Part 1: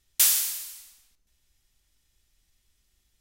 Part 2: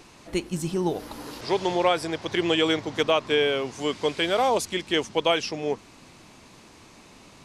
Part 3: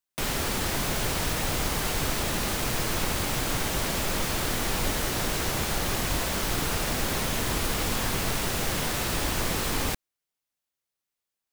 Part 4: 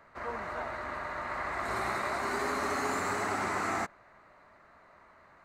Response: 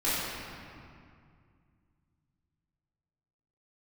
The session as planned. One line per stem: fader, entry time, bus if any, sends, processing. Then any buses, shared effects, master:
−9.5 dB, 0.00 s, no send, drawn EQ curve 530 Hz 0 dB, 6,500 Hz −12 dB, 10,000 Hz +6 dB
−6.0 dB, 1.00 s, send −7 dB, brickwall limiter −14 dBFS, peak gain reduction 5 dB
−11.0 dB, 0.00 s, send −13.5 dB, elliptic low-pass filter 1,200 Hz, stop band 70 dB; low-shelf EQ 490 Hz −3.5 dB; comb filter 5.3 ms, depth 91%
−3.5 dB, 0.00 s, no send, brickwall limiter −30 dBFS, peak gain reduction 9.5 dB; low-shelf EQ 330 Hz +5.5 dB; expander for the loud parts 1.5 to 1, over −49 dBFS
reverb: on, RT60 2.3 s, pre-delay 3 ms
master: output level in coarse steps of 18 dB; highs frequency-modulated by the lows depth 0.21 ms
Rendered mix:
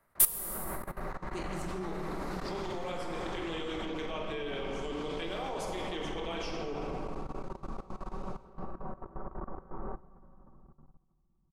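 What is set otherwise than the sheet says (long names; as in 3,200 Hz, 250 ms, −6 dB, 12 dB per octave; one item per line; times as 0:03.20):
stem 1 −9.5 dB → −3.0 dB
stem 2 −6.0 dB → −13.0 dB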